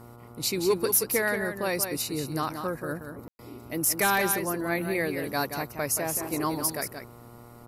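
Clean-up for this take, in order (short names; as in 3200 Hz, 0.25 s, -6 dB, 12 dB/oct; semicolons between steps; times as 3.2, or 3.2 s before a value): de-hum 119 Hz, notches 12; room tone fill 3.28–3.39; inverse comb 0.178 s -7.5 dB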